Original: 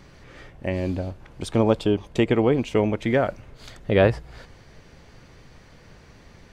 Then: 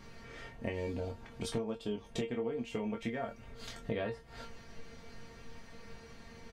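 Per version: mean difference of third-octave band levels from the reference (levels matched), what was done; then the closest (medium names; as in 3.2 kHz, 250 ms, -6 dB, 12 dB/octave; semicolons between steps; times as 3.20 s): 8.5 dB: feedback comb 230 Hz, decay 0.15 s, harmonics all, mix 90%; compression 6:1, threshold -41 dBFS, peak gain reduction 19.5 dB; doubling 24 ms -5.5 dB; trim +6 dB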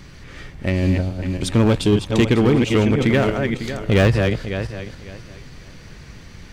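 6.5 dB: backward echo that repeats 275 ms, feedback 47%, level -6 dB; in parallel at -6 dB: wavefolder -17 dBFS; on the sum: peaking EQ 650 Hz -8.5 dB 1.9 oct; trim +5.5 dB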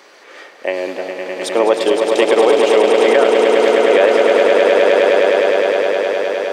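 13.0 dB: high-pass 400 Hz 24 dB/octave; on a send: echo with a slow build-up 103 ms, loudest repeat 8, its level -7 dB; on the sum: loudness maximiser +11 dB; trim -1 dB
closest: second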